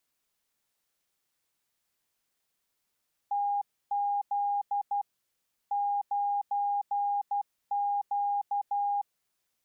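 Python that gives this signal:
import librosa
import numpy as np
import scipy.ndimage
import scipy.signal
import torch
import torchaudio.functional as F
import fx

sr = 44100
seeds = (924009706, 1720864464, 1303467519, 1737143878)

y = fx.morse(sr, text='TZ 9Q', wpm=12, hz=812.0, level_db=-26.0)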